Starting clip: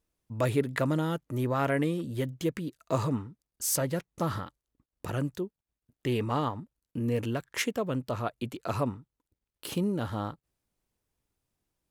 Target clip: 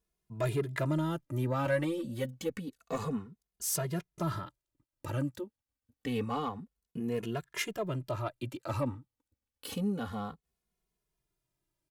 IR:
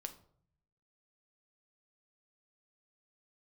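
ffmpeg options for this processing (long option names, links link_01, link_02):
-filter_complex "[0:a]asoftclip=type=tanh:threshold=-19.5dB,asettb=1/sr,asplit=3[link_01][link_02][link_03];[link_01]atrim=end=1.654[link_04];[link_02]atrim=start=1.65:end=2.42,asetpts=PTS-STARTPTS,afade=type=in:duration=0.004:curve=qsin,afade=type=out:start_time=0.766:duration=0.004:curve=qsin,aecho=1:1:5.4:0.74,atrim=end_sample=33957[link_05];[link_03]atrim=start=2.416[link_06];[link_04][link_05]acrossfade=duration=0.004:curve1=hsin:curve2=qsin[link_07];[link_07][link_06]acrossfade=duration=0.004:curve1=qsin:curve2=hsin,asplit=2[link_08][link_09];[link_09]adelay=2.4,afreqshift=-0.28[link_10];[link_08][link_10]amix=inputs=2:normalize=1"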